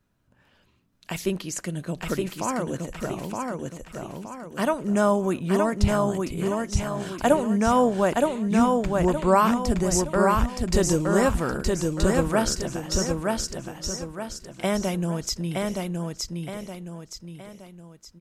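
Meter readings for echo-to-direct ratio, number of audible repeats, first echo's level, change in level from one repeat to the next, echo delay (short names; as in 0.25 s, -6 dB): -2.0 dB, 5, -3.0 dB, -8.0 dB, 0.919 s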